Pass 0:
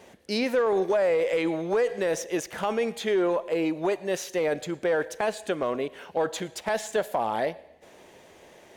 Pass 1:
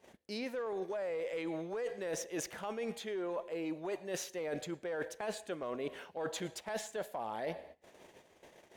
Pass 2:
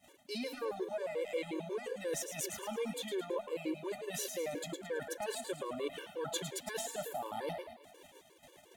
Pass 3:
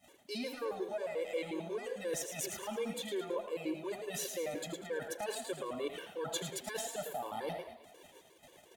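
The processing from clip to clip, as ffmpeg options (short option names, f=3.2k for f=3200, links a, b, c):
-af "agate=range=-17dB:threshold=-50dB:ratio=16:detection=peak,areverse,acompressor=threshold=-34dB:ratio=12,areverse,volume=-1.5dB"
-filter_complex "[0:a]aexciter=amount=1.2:drive=7.6:freq=2.9k,asplit=6[a][b][c][d][e][f];[b]adelay=109,afreqshift=33,volume=-7.5dB[g];[c]adelay=218,afreqshift=66,volume=-15dB[h];[d]adelay=327,afreqshift=99,volume=-22.6dB[i];[e]adelay=436,afreqshift=132,volume=-30.1dB[j];[f]adelay=545,afreqshift=165,volume=-37.6dB[k];[a][g][h][i][j][k]amix=inputs=6:normalize=0,afftfilt=real='re*gt(sin(2*PI*5.6*pts/sr)*(1-2*mod(floor(b*sr/1024/300),2)),0)':imag='im*gt(sin(2*PI*5.6*pts/sr)*(1-2*mod(floor(b*sr/1024/300),2)),0)':win_size=1024:overlap=0.75,volume=2dB"
-af "aecho=1:1:81:0.224"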